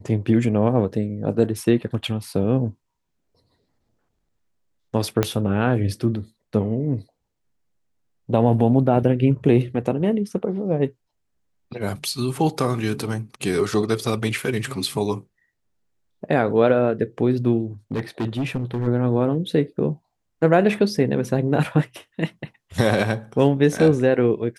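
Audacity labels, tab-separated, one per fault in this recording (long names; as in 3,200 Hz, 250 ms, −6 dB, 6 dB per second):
5.230000	5.230000	click −5 dBFS
17.920000	18.880000	clipping −20 dBFS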